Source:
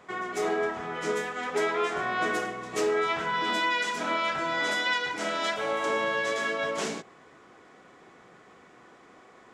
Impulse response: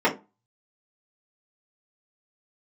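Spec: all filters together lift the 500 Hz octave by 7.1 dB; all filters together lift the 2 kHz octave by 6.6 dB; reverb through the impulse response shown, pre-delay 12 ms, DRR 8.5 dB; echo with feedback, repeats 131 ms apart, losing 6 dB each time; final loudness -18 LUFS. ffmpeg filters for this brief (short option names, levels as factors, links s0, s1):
-filter_complex "[0:a]equalizer=f=500:t=o:g=8.5,equalizer=f=2000:t=o:g=7.5,aecho=1:1:131|262|393|524|655|786:0.501|0.251|0.125|0.0626|0.0313|0.0157,asplit=2[s0][s1];[1:a]atrim=start_sample=2205,adelay=12[s2];[s1][s2]afir=irnorm=-1:irlink=0,volume=0.0501[s3];[s0][s3]amix=inputs=2:normalize=0,volume=1.33"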